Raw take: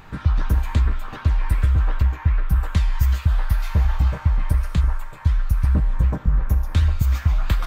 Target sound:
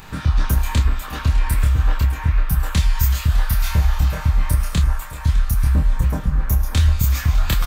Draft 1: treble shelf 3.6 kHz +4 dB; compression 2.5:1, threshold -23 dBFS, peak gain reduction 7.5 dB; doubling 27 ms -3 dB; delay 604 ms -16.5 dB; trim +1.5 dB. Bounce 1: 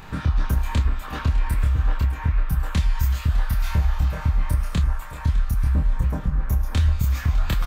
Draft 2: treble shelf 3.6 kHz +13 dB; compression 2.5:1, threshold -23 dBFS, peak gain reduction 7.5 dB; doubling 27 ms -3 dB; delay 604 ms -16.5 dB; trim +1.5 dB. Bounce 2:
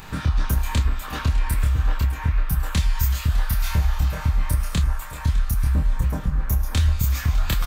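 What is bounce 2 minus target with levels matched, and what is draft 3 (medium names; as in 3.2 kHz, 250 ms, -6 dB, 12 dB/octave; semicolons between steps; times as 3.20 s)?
compression: peak gain reduction +4 dB
treble shelf 3.6 kHz +13 dB; compression 2.5:1, threshold -16.5 dBFS, peak gain reduction 3.5 dB; doubling 27 ms -3 dB; delay 604 ms -16.5 dB; trim +1.5 dB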